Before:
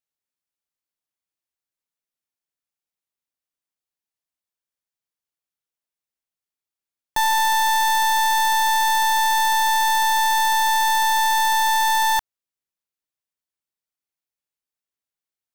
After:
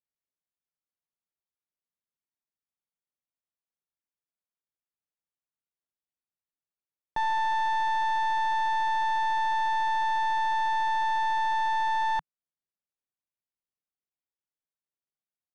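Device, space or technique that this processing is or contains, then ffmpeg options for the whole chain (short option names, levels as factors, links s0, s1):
phone in a pocket: -af "lowpass=3500,equalizer=f=160:t=o:w=0.51:g=4,highshelf=f=2100:g=-9.5,volume=0.531"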